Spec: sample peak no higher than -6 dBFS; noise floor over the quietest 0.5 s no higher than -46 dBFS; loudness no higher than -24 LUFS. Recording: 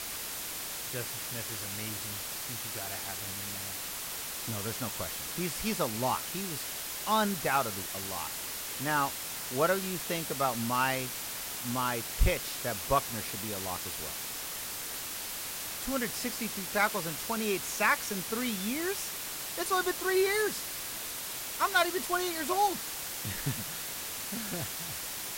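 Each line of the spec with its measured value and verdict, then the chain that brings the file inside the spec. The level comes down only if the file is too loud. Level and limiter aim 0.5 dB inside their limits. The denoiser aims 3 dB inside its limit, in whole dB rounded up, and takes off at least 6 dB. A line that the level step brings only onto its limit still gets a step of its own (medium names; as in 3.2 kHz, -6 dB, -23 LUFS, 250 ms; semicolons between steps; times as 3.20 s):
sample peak -13.5 dBFS: pass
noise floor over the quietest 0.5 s -39 dBFS: fail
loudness -32.0 LUFS: pass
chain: noise reduction 10 dB, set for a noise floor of -39 dBFS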